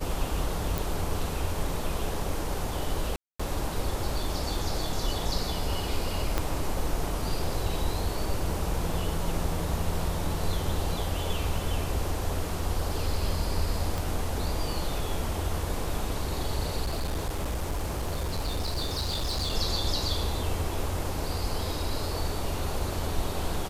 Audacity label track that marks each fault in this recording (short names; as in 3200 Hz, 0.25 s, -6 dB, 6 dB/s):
0.780000	0.780000	pop
3.160000	3.400000	gap 0.235 s
6.380000	6.380000	pop -11 dBFS
13.980000	13.980000	pop
16.830000	19.550000	clipped -25.5 dBFS